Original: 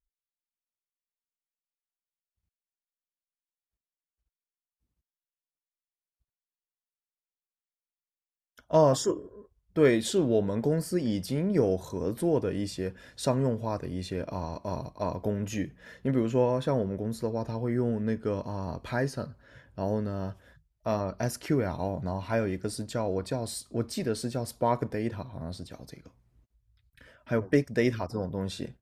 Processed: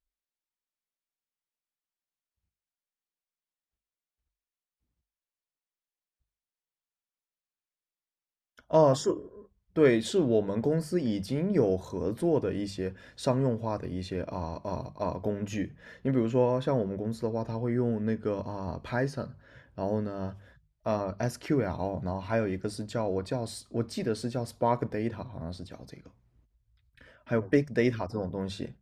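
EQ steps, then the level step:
high-shelf EQ 8,400 Hz −12 dB
mains-hum notches 50/100/150/200 Hz
0.0 dB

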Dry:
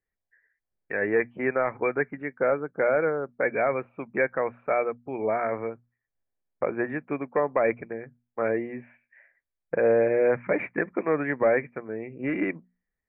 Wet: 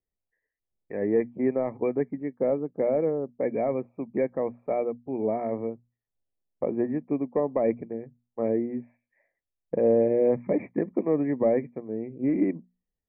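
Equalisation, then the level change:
dynamic equaliser 240 Hz, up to +7 dB, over −42 dBFS, Q 1.5
moving average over 30 samples
0.0 dB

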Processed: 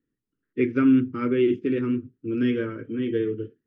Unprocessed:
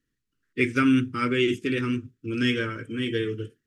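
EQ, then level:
high-frequency loss of the air 270 metres
parametric band 350 Hz +12 dB 2.9 octaves
−8.0 dB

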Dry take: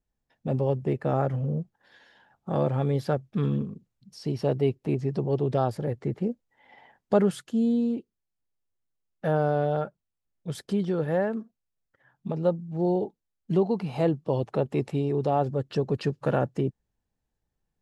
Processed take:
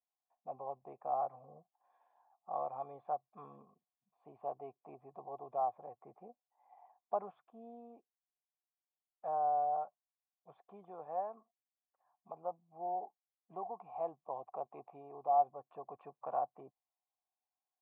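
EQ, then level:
formant resonators in series a
high-pass filter 550 Hz 6 dB per octave
high-shelf EQ 3,200 Hz +10.5 dB
+2.5 dB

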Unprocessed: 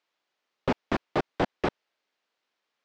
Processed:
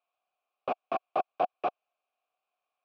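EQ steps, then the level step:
formant filter a
+7.0 dB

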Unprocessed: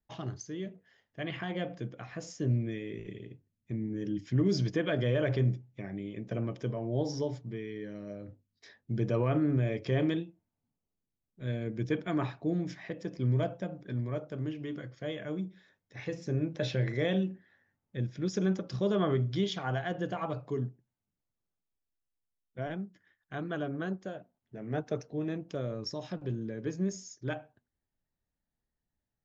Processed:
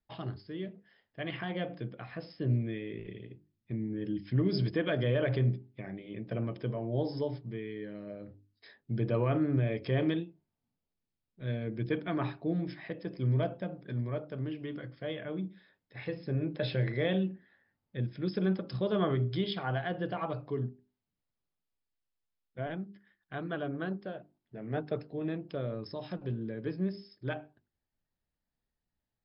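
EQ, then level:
linear-phase brick-wall low-pass 5,300 Hz
mains-hum notches 50/100/150/200/250/300/350/400 Hz
0.0 dB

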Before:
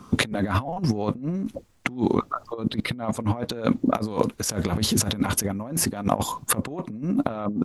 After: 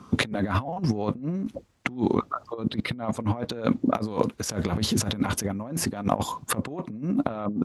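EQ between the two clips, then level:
high-pass filter 46 Hz
high-shelf EQ 9,800 Hz −11 dB
−1.5 dB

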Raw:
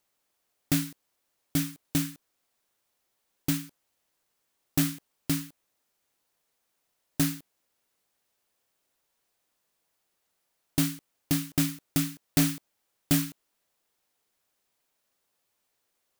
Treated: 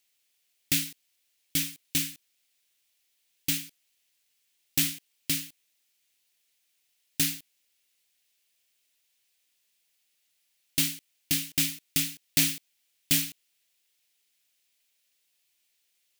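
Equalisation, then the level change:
high shelf with overshoot 1,700 Hz +12.5 dB, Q 1.5
−8.0 dB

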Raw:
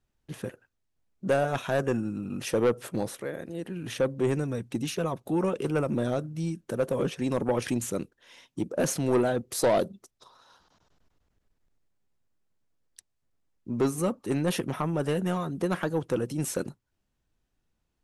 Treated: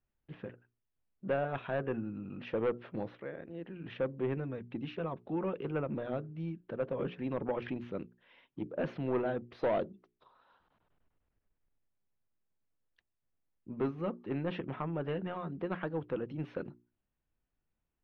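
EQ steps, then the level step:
inverse Chebyshev low-pass filter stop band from 7,200 Hz, stop band 50 dB
mains-hum notches 60/120/180/240/300/360/420 Hz
−7.5 dB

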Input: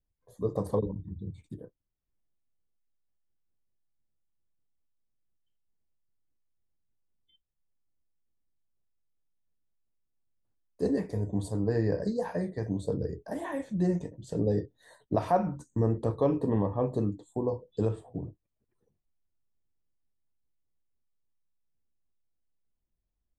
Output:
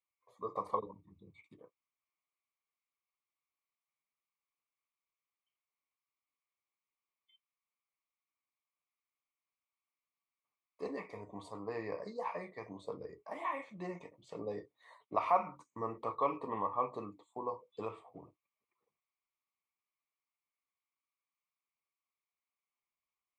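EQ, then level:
pair of resonant band-passes 1,600 Hz, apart 0.95 octaves
+10.5 dB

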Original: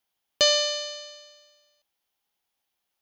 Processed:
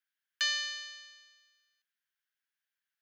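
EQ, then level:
four-pole ladder high-pass 1,500 Hz, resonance 75%
0.0 dB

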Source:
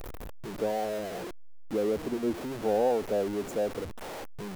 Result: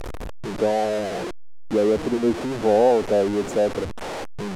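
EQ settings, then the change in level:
low-pass filter 8,500 Hz 12 dB per octave
+9.0 dB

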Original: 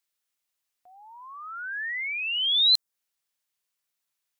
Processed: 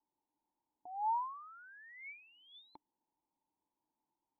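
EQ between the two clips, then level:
formant resonators in series u
parametric band 960 Hz +13.5 dB 0.45 octaves
+17.5 dB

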